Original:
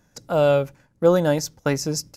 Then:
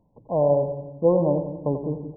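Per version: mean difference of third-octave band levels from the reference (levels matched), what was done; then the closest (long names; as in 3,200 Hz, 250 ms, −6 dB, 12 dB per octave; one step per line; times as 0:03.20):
11.5 dB: linear-phase brick-wall low-pass 1,100 Hz
on a send: echo with a time of its own for lows and highs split 320 Hz, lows 169 ms, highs 89 ms, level −8 dB
on the sum: level −2.5 dB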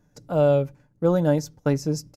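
4.0 dB: tilt shelving filter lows +5 dB, about 780 Hz
comb filter 6.8 ms, depth 36%
level −5 dB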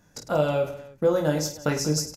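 6.0 dB: downward compressor 3 to 1, threshold −23 dBFS, peak gain reduction 9.5 dB
on a send: reverse bouncing-ball delay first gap 20 ms, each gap 1.6×, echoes 5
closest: second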